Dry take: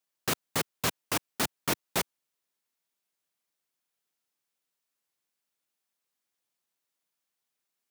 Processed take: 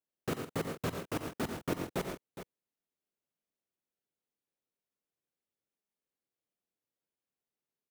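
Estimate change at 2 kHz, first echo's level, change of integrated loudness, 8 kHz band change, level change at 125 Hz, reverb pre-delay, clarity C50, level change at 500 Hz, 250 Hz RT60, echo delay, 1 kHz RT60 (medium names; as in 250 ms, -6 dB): -9.0 dB, -15.0 dB, -6.5 dB, -14.5 dB, 0.0 dB, no reverb, no reverb, -0.5 dB, no reverb, 55 ms, no reverb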